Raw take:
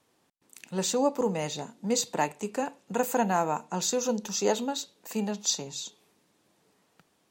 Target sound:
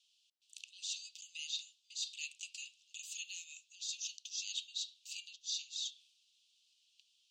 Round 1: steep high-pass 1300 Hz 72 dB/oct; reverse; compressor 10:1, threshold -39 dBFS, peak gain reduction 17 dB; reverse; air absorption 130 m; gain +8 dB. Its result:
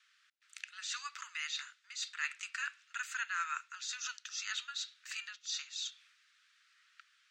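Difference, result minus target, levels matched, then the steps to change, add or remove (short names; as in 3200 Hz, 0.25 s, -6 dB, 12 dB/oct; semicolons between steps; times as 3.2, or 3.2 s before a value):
2000 Hz band +10.0 dB
change: steep high-pass 2800 Hz 72 dB/oct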